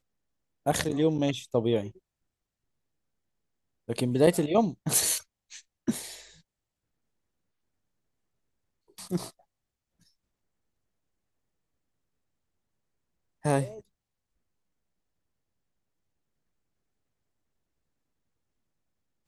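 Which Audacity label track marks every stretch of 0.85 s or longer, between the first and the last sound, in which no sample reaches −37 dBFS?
1.900000	3.890000	silence
6.170000	8.980000	silence
9.300000	13.450000	silence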